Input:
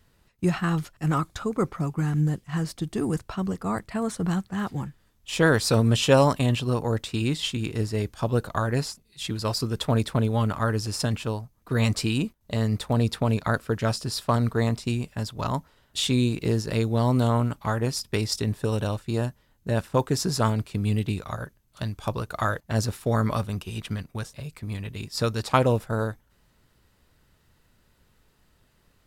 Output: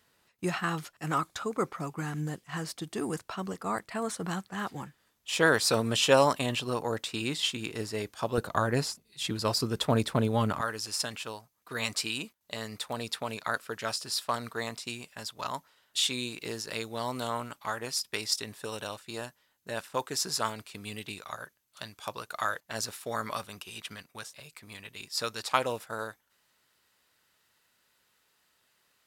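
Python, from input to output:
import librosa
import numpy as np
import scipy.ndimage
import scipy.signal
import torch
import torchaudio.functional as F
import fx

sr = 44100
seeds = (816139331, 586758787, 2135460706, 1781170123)

y = fx.highpass(x, sr, hz=fx.steps((0.0, 560.0), (8.38, 200.0), (10.61, 1400.0)), slope=6)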